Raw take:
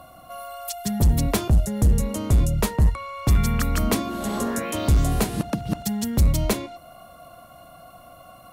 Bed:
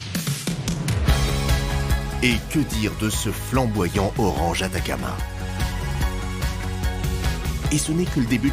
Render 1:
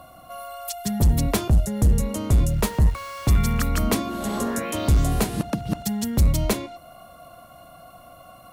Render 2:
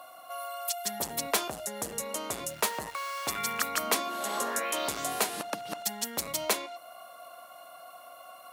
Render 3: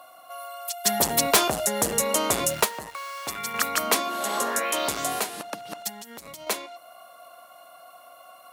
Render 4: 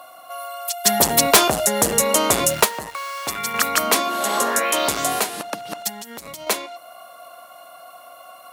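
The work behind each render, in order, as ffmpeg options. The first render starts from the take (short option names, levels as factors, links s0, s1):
-filter_complex "[0:a]asettb=1/sr,asplit=3[s0][s1][s2];[s0]atrim=end=2.464[s3];[s1]atrim=start=2.46:end=3.69,asetpts=PTS-STARTPTS,afade=t=in:d=0.004:c=qsin,afade=t=out:st=1.226:d=0.004:c=qsin,aeval=exprs='val(0)*gte(abs(val(0)),0.015)':c=same[s4];[s2]atrim=start=3.686[s5];[s3][s4]acrossfade=d=0.004:c1=hsin:c2=qsin[s6];[s6][s5]acrossfade=d=0.004:c1=qsin:c2=hsin"
-af "highpass=650"
-filter_complex "[0:a]asplit=3[s0][s1][s2];[s0]afade=t=out:st=0.84:d=0.02[s3];[s1]aeval=exprs='0.282*sin(PI/2*2.51*val(0)/0.282)':c=same,afade=t=in:st=0.84:d=0.02,afade=t=out:st=2.63:d=0.02[s4];[s2]afade=t=in:st=2.63:d=0.02[s5];[s3][s4][s5]amix=inputs=3:normalize=0,asettb=1/sr,asplit=3[s6][s7][s8];[s6]atrim=end=3.544[s9];[s7]atrim=start=3.54:end=5.2,asetpts=PTS-STARTPTS,afade=t=in:d=0.004:c=qsin,afade=t=out:st=1.656:d=0.004:c=qsin,acontrast=30[s10];[s8]atrim=start=5.196[s11];[s9][s10]acrossfade=d=0.004:c1=hsin:c2=qsin[s12];[s12][s11]acrossfade=d=0.004:c1=qsin:c2=hsin,asettb=1/sr,asplit=3[s13][s14][s15];[s13]atrim=end=5.894[s16];[s14]atrim=start=5.89:end=6.47,asetpts=PTS-STARTPTS,afade=t=in:d=0.004:c=qsin,afade=t=out:st=0.576:d=0.004:c=qsin,acompressor=threshold=0.0141:ratio=12:attack=3.2:release=140:knee=1:detection=peak[s17];[s15]atrim=start=6.466[s18];[s16][s17]acrossfade=d=0.004:c1=hsin:c2=qsin[s19];[s19][s18]acrossfade=d=0.004:c1=qsin:c2=hsin"
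-af "volume=2,alimiter=limit=0.708:level=0:latency=1"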